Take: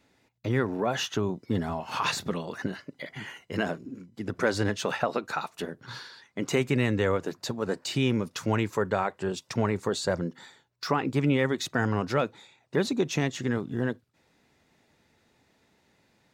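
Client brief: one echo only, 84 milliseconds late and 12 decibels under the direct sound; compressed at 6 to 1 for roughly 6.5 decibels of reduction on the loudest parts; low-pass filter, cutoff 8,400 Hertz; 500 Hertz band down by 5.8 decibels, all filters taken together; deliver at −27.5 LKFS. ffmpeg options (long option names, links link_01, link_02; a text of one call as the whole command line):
ffmpeg -i in.wav -af "lowpass=8400,equalizer=frequency=500:width_type=o:gain=-7.5,acompressor=threshold=-29dB:ratio=6,aecho=1:1:84:0.251,volume=8dB" out.wav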